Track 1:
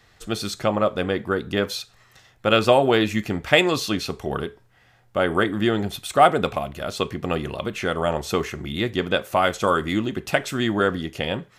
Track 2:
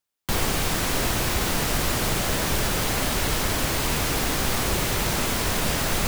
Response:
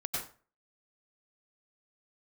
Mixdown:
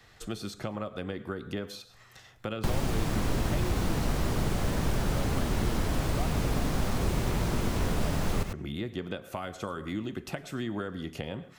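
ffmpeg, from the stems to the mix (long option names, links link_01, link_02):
-filter_complex "[0:a]acompressor=threshold=-35dB:ratio=2,volume=-1.5dB,asplit=2[link_01][link_02];[link_02]volume=-19.5dB[link_03];[1:a]highshelf=frequency=11000:gain=-6.5,adelay=2350,volume=1.5dB,asplit=2[link_04][link_05];[link_05]volume=-9.5dB[link_06];[2:a]atrim=start_sample=2205[link_07];[link_03][link_07]afir=irnorm=-1:irlink=0[link_08];[link_06]aecho=0:1:99:1[link_09];[link_01][link_04][link_08][link_09]amix=inputs=4:normalize=0,acrossover=split=280|1300[link_10][link_11][link_12];[link_10]acompressor=threshold=-24dB:ratio=4[link_13];[link_11]acompressor=threshold=-37dB:ratio=4[link_14];[link_12]acompressor=threshold=-43dB:ratio=4[link_15];[link_13][link_14][link_15]amix=inputs=3:normalize=0"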